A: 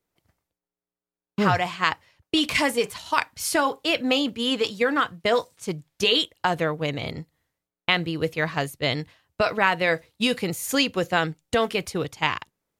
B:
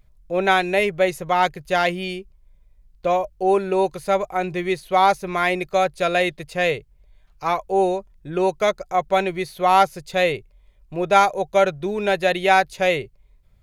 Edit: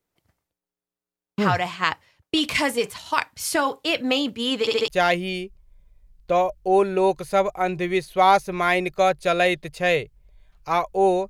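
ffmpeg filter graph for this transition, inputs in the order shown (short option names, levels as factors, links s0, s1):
-filter_complex "[0:a]apad=whole_dur=11.29,atrim=end=11.29,asplit=4[s0][s1][s2][s3];[s0]atrim=end=4.672[s4];[s1]atrim=start=4.598:end=4.672[s5];[s2]atrim=start=4.598:end=4.672[s6];[s3]atrim=start=4.598:end=4.672[s7];[1:a]atrim=start=1.628:end=8.04[s8];[s4][s5]acrossfade=d=0.004:c1=hsin:c2=hsin[s9];[s9][s6]acrossfade=d=0.004:c1=hsin:c2=hsin[s10];[s10][s7]acrossfade=d=0.004:c1=hsin:c2=hsin[s11];[s11][s8]acrossfade=d=0.004:c1=hsin:c2=hsin"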